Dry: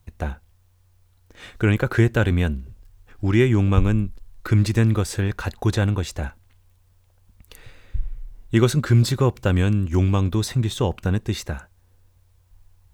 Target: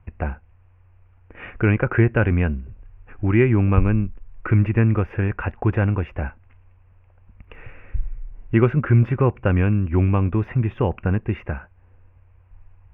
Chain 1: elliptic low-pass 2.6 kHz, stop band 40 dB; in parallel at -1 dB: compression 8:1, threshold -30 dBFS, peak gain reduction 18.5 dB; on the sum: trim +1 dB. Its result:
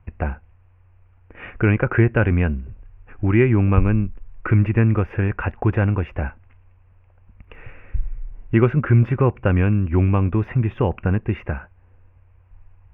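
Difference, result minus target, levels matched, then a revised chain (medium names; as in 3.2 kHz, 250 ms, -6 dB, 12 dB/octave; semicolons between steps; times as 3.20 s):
compression: peak gain reduction -8 dB
elliptic low-pass 2.6 kHz, stop band 40 dB; in parallel at -1 dB: compression 8:1, threshold -39 dBFS, peak gain reduction 26.5 dB; on the sum: trim +1 dB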